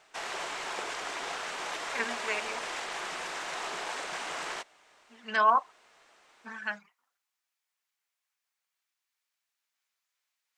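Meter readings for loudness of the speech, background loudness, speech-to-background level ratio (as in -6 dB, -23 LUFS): -30.0 LUFS, -35.5 LUFS, 5.5 dB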